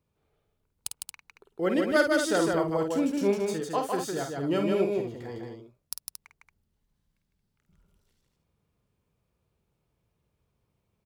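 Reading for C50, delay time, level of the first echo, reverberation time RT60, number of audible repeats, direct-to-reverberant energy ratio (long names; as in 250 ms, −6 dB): no reverb audible, 50 ms, −6.5 dB, no reverb audible, 3, no reverb audible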